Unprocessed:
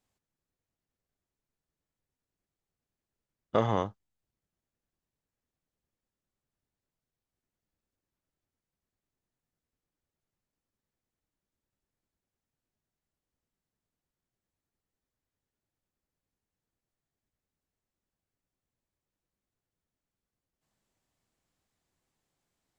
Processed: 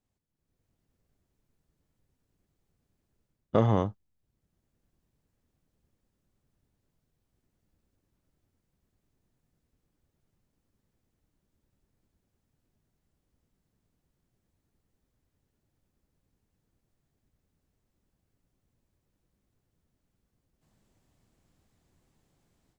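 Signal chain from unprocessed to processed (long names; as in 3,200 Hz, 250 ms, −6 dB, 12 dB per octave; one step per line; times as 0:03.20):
low-shelf EQ 450 Hz +11 dB
automatic gain control gain up to 13.5 dB
level −8 dB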